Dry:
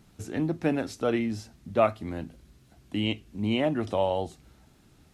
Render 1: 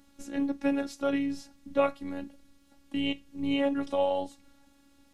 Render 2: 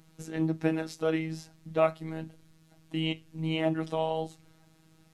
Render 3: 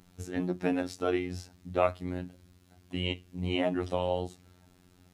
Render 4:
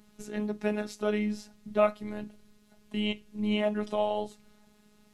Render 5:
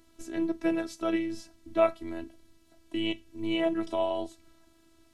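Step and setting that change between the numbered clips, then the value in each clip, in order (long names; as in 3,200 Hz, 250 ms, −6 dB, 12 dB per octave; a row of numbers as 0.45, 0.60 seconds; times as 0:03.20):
phases set to zero, frequency: 280, 160, 90, 210, 330 Hertz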